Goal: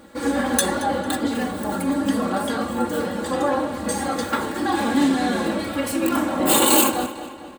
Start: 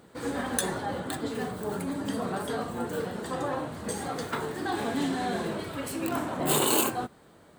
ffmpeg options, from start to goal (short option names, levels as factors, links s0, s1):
-filter_complex "[0:a]aecho=1:1:3.6:0.86,asplit=2[s0][s1];[s1]adelay=225,lowpass=f=4800:p=1,volume=0.224,asplit=2[s2][s3];[s3]adelay=225,lowpass=f=4800:p=1,volume=0.53,asplit=2[s4][s5];[s5]adelay=225,lowpass=f=4800:p=1,volume=0.53,asplit=2[s6][s7];[s7]adelay=225,lowpass=f=4800:p=1,volume=0.53,asplit=2[s8][s9];[s9]adelay=225,lowpass=f=4800:p=1,volume=0.53[s10];[s2][s4][s6][s8][s10]amix=inputs=5:normalize=0[s11];[s0][s11]amix=inputs=2:normalize=0,volume=2"